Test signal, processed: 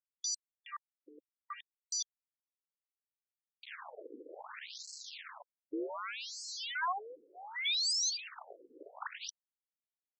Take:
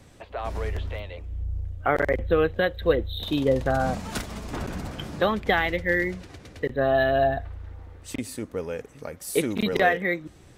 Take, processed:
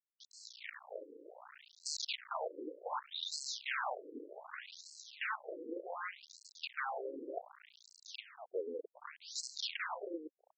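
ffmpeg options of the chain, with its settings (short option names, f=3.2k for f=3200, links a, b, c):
-af "aeval=exprs='(mod(10*val(0)+1,2)-1)/10':c=same,acrusher=bits=4:dc=4:mix=0:aa=0.000001,afftfilt=real='re*between(b*sr/1024,360*pow(5900/360,0.5+0.5*sin(2*PI*0.66*pts/sr))/1.41,360*pow(5900/360,0.5+0.5*sin(2*PI*0.66*pts/sr))*1.41)':imag='im*between(b*sr/1024,360*pow(5900/360,0.5+0.5*sin(2*PI*0.66*pts/sr))/1.41,360*pow(5900/360,0.5+0.5*sin(2*PI*0.66*pts/sr))*1.41)':win_size=1024:overlap=0.75,volume=-1.5dB"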